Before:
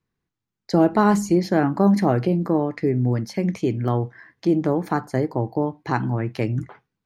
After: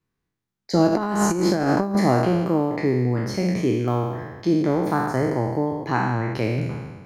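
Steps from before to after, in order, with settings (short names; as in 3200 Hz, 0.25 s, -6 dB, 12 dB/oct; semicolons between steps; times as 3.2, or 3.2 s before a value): spectral trails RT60 1.34 s; 0.87–1.95 negative-ratio compressor -18 dBFS, ratio -0.5; gain -2 dB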